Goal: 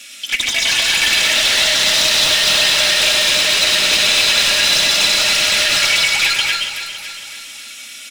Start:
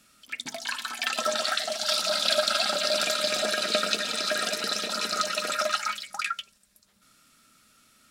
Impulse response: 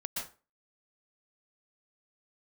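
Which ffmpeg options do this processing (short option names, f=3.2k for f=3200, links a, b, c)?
-filter_complex "[0:a]highshelf=f=2.2k:g=-10.5,bandreject=f=4.5k:w=6.3,aecho=1:1:3.5:0.81,aeval=exprs='(tanh(70.8*val(0)+0.2)-tanh(0.2))/70.8':c=same,aexciter=amount=11.8:drive=6.6:freq=2k,asplit=2[a][b];[b]highpass=f=720:p=1,volume=20dB,asoftclip=type=tanh:threshold=-4.5dB[c];[a][c]amix=inputs=2:normalize=0,lowpass=f=2.5k:p=1,volume=-6dB,flanger=delay=1.2:depth=5.3:regen=-48:speed=2:shape=triangular,aecho=1:1:279|558|837|1116|1395|1674|1953:0.316|0.183|0.106|0.0617|0.0358|0.0208|0.012,asplit=2[d][e];[1:a]atrim=start_sample=2205,adelay=101[f];[e][f]afir=irnorm=-1:irlink=0,volume=-2.5dB[g];[d][g]amix=inputs=2:normalize=0,volume=4.5dB"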